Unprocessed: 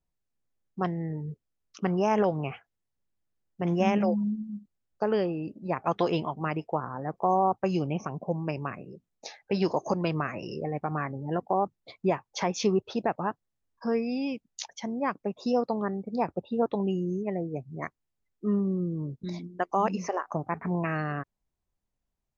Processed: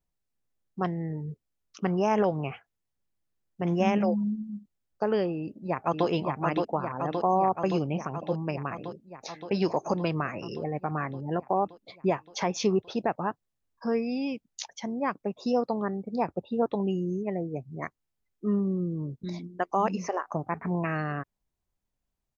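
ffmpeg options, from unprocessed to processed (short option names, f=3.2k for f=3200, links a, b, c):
-filter_complex "[0:a]asplit=2[a][b];[b]afade=t=in:st=5.36:d=0.01,afade=t=out:st=6.07:d=0.01,aecho=0:1:570|1140|1710|2280|2850|3420|3990|4560|5130|5700|6270|6840:0.707946|0.530959|0.39822|0.298665|0.223998|0.167999|0.125999|0.0944994|0.0708745|0.0531559|0.0398669|0.0299002[c];[a][c]amix=inputs=2:normalize=0"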